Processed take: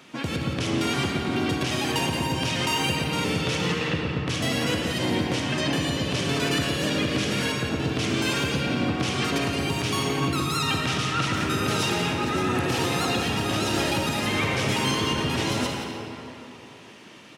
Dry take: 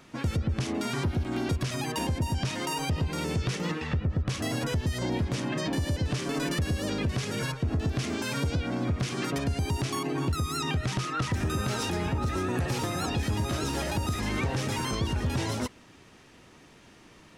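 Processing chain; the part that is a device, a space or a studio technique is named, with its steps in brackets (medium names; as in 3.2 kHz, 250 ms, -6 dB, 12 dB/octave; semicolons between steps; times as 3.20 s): PA in a hall (high-pass 150 Hz 12 dB/octave; peaking EQ 3 kHz +6 dB 0.83 oct; delay 173 ms -9.5 dB; reverberation RT60 3.1 s, pre-delay 47 ms, DRR 1 dB); trim +3 dB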